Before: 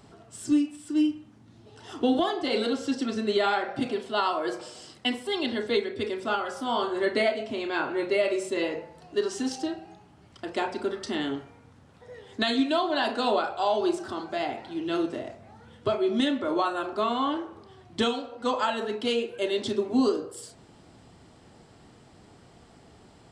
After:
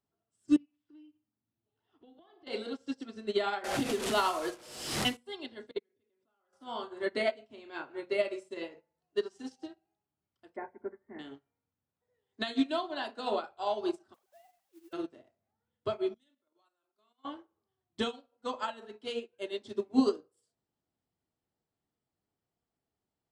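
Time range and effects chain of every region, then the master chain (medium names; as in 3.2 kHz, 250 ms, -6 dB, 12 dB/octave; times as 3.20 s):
0.56–2.47 s: low-pass 4 kHz 24 dB/octave + compression 10:1, threshold -31 dBFS
3.64–5.17 s: one-bit delta coder 64 kbps, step -31.5 dBFS + waveshaping leveller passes 1 + swell ahead of each attack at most 25 dB/s
5.71–6.53 s: low-pass 2.6 kHz 6 dB/octave + level held to a coarse grid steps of 22 dB
10.56–11.19 s: steep low-pass 2.2 kHz 96 dB/octave + band-stop 1.3 kHz, Q 5.2
14.14–14.93 s: formants replaced by sine waves + compression 2:1, threshold -37 dBFS + word length cut 8-bit, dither triangular
16.14–17.25 s: pre-emphasis filter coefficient 0.8 + level held to a coarse grid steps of 10 dB
whole clip: hum notches 60/120/180/240 Hz; upward expansion 2.5:1, over -42 dBFS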